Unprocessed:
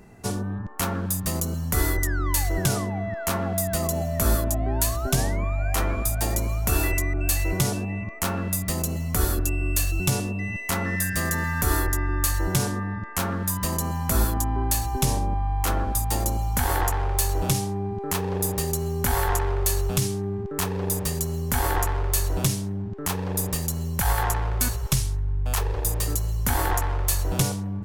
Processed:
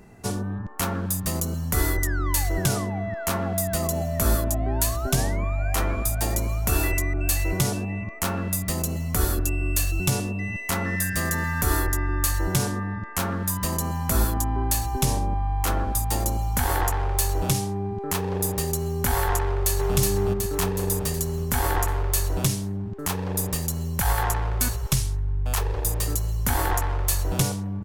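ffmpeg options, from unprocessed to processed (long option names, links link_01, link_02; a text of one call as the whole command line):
ffmpeg -i in.wav -filter_complex "[0:a]asplit=2[link_01][link_02];[link_02]afade=type=in:start_time=19.42:duration=0.01,afade=type=out:start_time=19.96:duration=0.01,aecho=0:1:370|740|1110|1480|1850|2220|2590|2960|3330:0.794328|0.476597|0.285958|0.171575|0.102945|0.061767|0.0370602|0.0222361|0.0133417[link_03];[link_01][link_03]amix=inputs=2:normalize=0" out.wav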